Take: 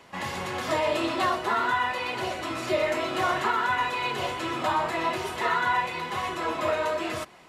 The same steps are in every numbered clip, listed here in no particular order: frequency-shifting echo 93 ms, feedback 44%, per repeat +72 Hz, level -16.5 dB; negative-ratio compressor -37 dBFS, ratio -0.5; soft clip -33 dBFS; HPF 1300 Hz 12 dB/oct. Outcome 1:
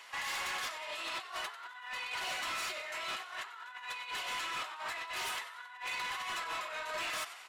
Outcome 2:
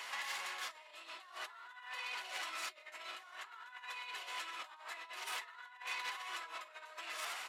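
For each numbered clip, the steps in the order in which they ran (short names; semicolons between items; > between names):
HPF > negative-ratio compressor > frequency-shifting echo > soft clip; frequency-shifting echo > negative-ratio compressor > soft clip > HPF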